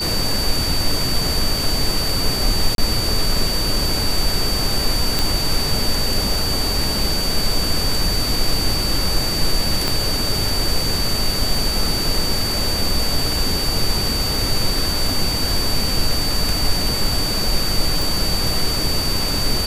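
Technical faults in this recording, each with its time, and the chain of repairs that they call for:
tone 4600 Hz -22 dBFS
2.75–2.78 gap 32 ms
5.19 pop
9.88 pop -4 dBFS
18.02 pop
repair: de-click; notch 4600 Hz, Q 30; interpolate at 2.75, 32 ms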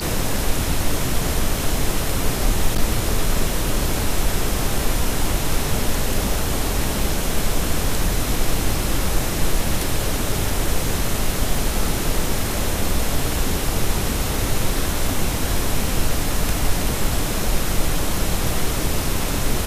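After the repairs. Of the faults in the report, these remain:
9.88 pop

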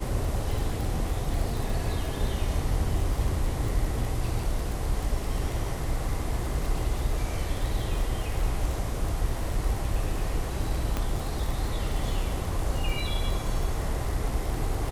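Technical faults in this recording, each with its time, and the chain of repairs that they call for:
crackle 32/s -30 dBFS
10.97 pop -14 dBFS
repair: de-click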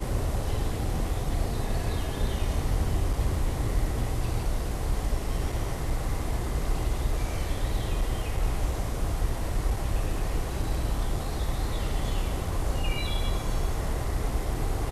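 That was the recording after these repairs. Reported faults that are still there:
10.97 pop

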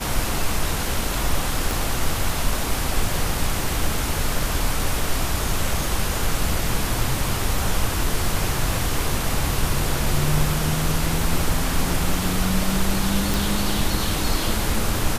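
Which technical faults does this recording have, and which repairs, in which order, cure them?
1.71 pop
13.34 pop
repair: de-click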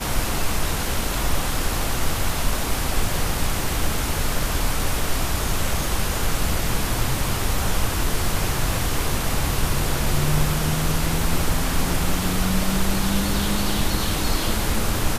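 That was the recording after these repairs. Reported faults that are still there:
1.71 pop

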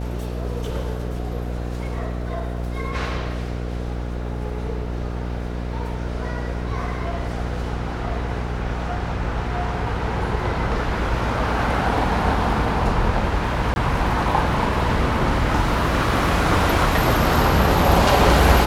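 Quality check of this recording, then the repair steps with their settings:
buzz 60 Hz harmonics 12 -27 dBFS
13.74–13.76 gap 21 ms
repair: de-hum 60 Hz, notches 12; interpolate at 13.74, 21 ms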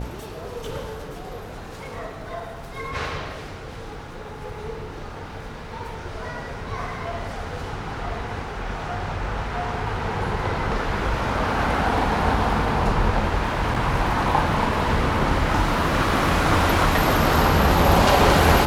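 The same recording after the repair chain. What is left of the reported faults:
none

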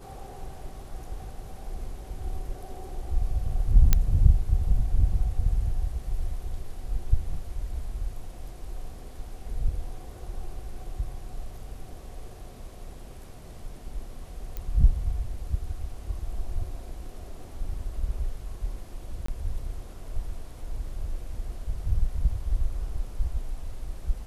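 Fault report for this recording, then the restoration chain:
3.93 pop -5 dBFS
14.57 pop -20 dBFS
19.26–19.28 gap 24 ms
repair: de-click; interpolate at 19.26, 24 ms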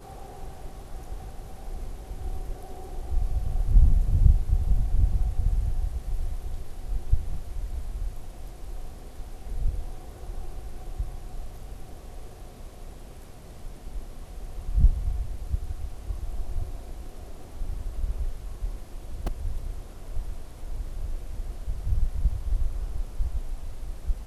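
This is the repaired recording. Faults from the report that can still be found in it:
none

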